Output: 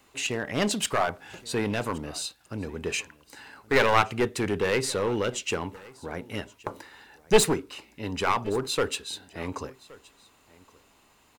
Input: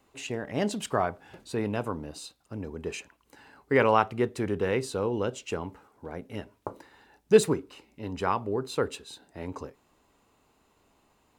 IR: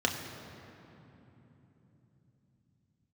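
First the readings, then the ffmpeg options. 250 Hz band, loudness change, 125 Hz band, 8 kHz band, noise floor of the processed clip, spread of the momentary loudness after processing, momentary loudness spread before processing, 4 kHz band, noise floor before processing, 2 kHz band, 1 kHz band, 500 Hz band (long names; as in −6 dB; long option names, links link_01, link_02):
+0.5 dB, +1.5 dB, +1.0 dB, +9.0 dB, −62 dBFS, 18 LU, 20 LU, +9.0 dB, −68 dBFS, +6.0 dB, +2.0 dB, 0.0 dB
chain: -filter_complex "[0:a]acrossover=split=1300[link_01][link_02];[link_02]acontrast=79[link_03];[link_01][link_03]amix=inputs=2:normalize=0,aeval=exprs='clip(val(0),-1,0.0668)':channel_layout=same,aecho=1:1:1121:0.0708,volume=2.5dB"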